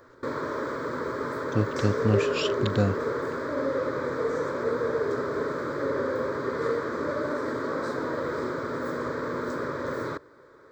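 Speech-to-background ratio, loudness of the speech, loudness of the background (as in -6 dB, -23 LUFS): 1.0 dB, -28.5 LUFS, -29.5 LUFS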